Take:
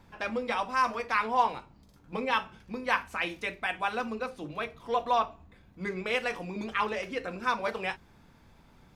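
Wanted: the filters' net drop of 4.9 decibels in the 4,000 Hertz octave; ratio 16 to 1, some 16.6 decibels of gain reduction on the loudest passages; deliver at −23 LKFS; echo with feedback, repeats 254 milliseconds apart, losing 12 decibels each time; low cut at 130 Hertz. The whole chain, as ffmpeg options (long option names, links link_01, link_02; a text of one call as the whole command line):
ffmpeg -i in.wav -af "highpass=130,equalizer=frequency=4000:width_type=o:gain=-7,acompressor=threshold=-37dB:ratio=16,aecho=1:1:254|508|762:0.251|0.0628|0.0157,volume=19dB" out.wav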